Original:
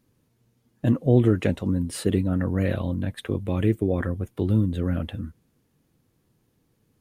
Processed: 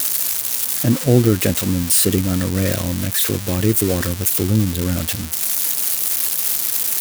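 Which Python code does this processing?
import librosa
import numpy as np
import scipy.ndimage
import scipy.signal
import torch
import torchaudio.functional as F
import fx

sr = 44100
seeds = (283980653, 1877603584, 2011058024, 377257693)

y = x + 0.5 * 10.0 ** (-14.0 / 20.0) * np.diff(np.sign(x), prepend=np.sign(x[:1]))
y = y * 10.0 ** (4.5 / 20.0)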